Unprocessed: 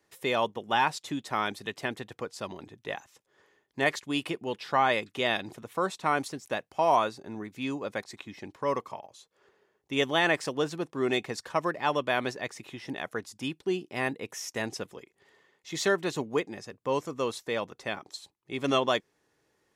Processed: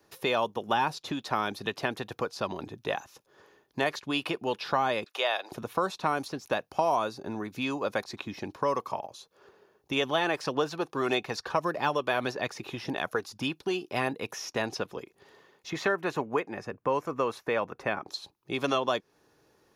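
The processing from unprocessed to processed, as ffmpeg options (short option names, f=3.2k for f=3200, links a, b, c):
-filter_complex "[0:a]asettb=1/sr,asplit=3[a][b][c];[a]atrim=end=5.044[d];[b]atrim=start=5.04:end=5.52,asetpts=PTS-STARTPTS,afade=t=in:d=0.004:c=qsin,afade=t=out:st=0.476:d=0.004:c=qsin,highpass=f=560:w=0.5412,highpass=f=560:w=1.3066[e];[c]atrim=start=5.516[f];[d][e]acrossfade=d=0.004:c1=hsin:c2=qsin[g];[g][f]acrossfade=d=0.004:c1=qsin:c2=hsin,asplit=3[h][i][j];[h]afade=t=out:st=10.03:d=0.02[k];[i]aphaser=in_gain=1:out_gain=1:delay=2.6:decay=0.31:speed=1.7:type=sinusoidal,afade=t=in:st=10.03:d=0.02,afade=t=out:st=14.26:d=0.02[l];[j]afade=t=in:st=14.26:d=0.02[m];[k][l][m]amix=inputs=3:normalize=0,asettb=1/sr,asplit=3[n][o][p];[n]atrim=end=15.704[q];[o]atrim=start=15.7:end=18.08,asetpts=PTS-STARTPTS,afade=t=in:d=0.004:c=qsin,afade=t=out:st=2.376:d=0.004:c=qsin,highshelf=f=2.9k:t=q:w=1.5:g=-9.5[r];[p]atrim=start=18.076[s];[q][r]acrossfade=d=0.004:c1=hsin:c2=qsin[t];[t][s]acrossfade=d=0.004:c1=qsin:c2=hsin,equalizer=f=2k:t=o:w=0.33:g=-9,equalizer=f=3.15k:t=o:w=0.33:g=-4,equalizer=f=8k:t=o:w=0.33:g=-11,acrossover=split=560|5000[u][v][w];[u]acompressor=threshold=-42dB:ratio=4[x];[v]acompressor=threshold=-35dB:ratio=4[y];[w]acompressor=threshold=-59dB:ratio=4[z];[x][y][z]amix=inputs=3:normalize=0,volume=8dB"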